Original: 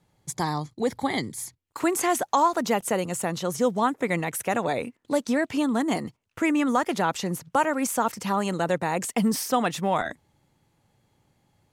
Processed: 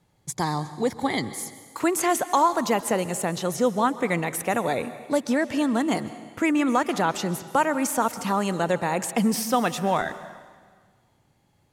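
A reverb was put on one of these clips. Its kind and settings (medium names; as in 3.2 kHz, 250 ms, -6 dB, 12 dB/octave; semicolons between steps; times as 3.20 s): plate-style reverb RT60 1.6 s, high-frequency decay 0.95×, pre-delay 115 ms, DRR 13.5 dB; trim +1 dB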